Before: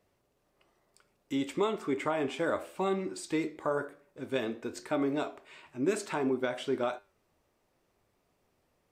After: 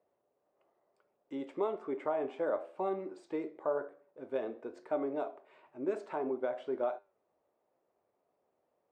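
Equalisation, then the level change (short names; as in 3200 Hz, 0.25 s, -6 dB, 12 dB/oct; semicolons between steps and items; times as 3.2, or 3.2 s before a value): band-pass 610 Hz, Q 1.4; 0.0 dB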